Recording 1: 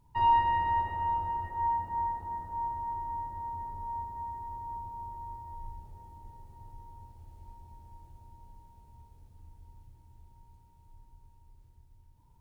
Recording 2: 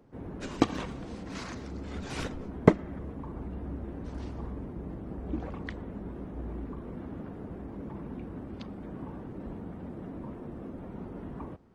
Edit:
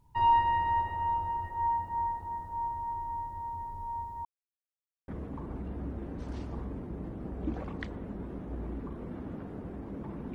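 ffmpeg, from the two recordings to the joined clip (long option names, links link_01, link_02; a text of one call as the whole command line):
ffmpeg -i cue0.wav -i cue1.wav -filter_complex "[0:a]apad=whole_dur=10.34,atrim=end=10.34,asplit=2[link_01][link_02];[link_01]atrim=end=4.25,asetpts=PTS-STARTPTS,afade=type=out:start_time=4.246:duration=0.004:curve=hsin[link_03];[link_02]atrim=start=4.25:end=5.08,asetpts=PTS-STARTPTS,volume=0[link_04];[1:a]atrim=start=2.94:end=8.2,asetpts=PTS-STARTPTS,afade=type=in:duration=0.004:curve=hsin[link_05];[link_03][link_04][link_05]concat=n=3:v=0:a=1" out.wav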